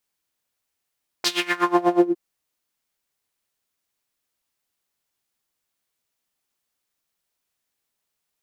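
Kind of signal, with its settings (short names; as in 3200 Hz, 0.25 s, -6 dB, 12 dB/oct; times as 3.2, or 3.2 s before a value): synth patch with tremolo F4, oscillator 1 triangle, sub -15 dB, noise -14 dB, filter bandpass, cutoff 290 Hz, Q 3.1, filter envelope 4 oct, filter decay 0.57 s, filter sustain 30%, attack 4.2 ms, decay 0.24 s, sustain -4.5 dB, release 0.18 s, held 0.73 s, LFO 8.2 Hz, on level 20.5 dB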